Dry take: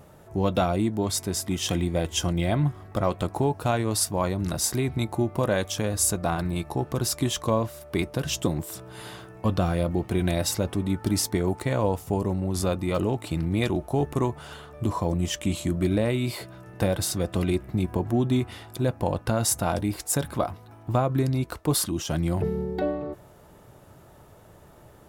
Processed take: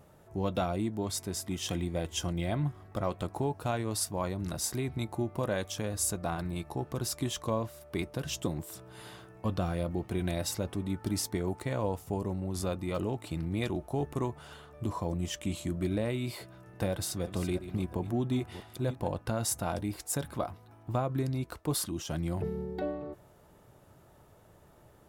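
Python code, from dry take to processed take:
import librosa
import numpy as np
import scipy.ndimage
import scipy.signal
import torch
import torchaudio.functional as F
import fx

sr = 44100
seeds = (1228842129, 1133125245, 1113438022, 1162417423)

y = fx.reverse_delay(x, sr, ms=345, wet_db=-12, at=(16.9, 19.08))
y = F.gain(torch.from_numpy(y), -7.5).numpy()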